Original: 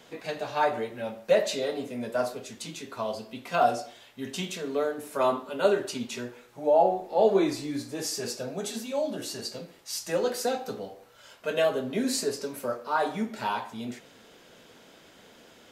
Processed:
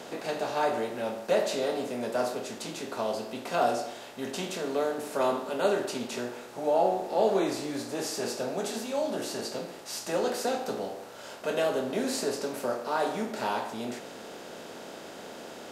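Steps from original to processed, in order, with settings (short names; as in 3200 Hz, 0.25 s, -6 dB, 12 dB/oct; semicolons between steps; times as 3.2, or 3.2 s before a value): per-bin compression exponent 0.6; gain -6 dB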